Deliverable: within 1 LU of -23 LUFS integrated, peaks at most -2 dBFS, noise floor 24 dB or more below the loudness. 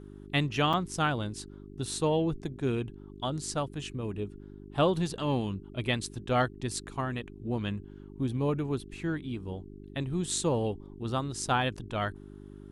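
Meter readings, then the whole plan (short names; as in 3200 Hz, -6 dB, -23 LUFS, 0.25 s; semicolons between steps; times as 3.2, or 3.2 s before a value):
dropouts 1; longest dropout 5.1 ms; hum 50 Hz; harmonics up to 400 Hz; hum level -45 dBFS; loudness -32.0 LUFS; peak -14.0 dBFS; loudness target -23.0 LUFS
-> interpolate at 0.73, 5.1 ms; de-hum 50 Hz, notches 8; gain +9 dB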